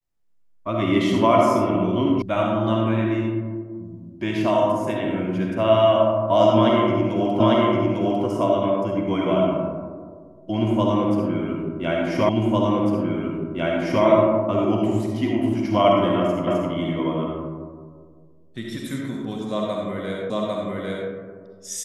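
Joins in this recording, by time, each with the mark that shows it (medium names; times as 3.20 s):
2.22 s: sound stops dead
7.40 s: repeat of the last 0.85 s
12.29 s: repeat of the last 1.75 s
16.47 s: repeat of the last 0.26 s
20.30 s: repeat of the last 0.8 s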